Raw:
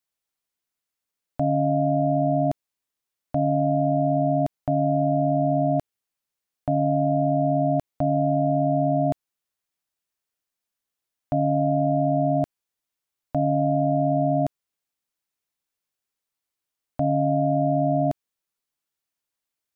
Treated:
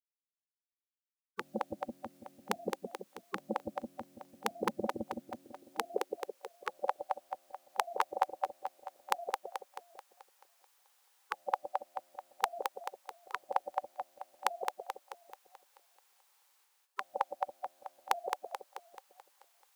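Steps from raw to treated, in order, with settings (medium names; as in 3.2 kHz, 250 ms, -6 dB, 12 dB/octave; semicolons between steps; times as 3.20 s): two-band feedback delay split 540 Hz, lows 166 ms, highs 217 ms, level -5 dB; spectral gate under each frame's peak -25 dB weak; high-pass sweep 220 Hz -> 720 Hz, 5.23–7.07 s; trim +14 dB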